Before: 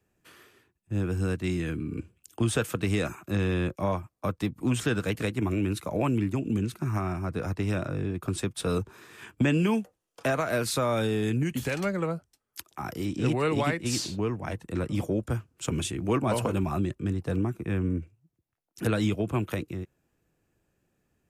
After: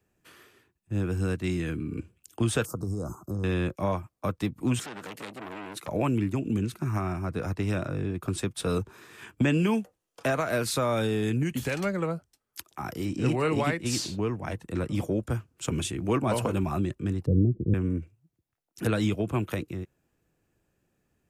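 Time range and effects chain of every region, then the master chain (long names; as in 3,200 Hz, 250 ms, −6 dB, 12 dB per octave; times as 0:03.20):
0:02.65–0:03.44: low-shelf EQ 140 Hz +7.5 dB + downward compressor 4 to 1, threshold −28 dBFS + elliptic band-stop filter 1,200–5,100 Hz
0:04.79–0:05.88: high-pass filter 210 Hz + downward compressor 10 to 1, threshold −29 dBFS + saturating transformer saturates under 2,200 Hz
0:13.04–0:13.65: notch filter 3,500 Hz, Q 5.8 + double-tracking delay 31 ms −14 dB
0:17.26–0:17.74: Butterworth low-pass 540 Hz 48 dB per octave + low-shelf EQ 190 Hz +10 dB
whole clip: no processing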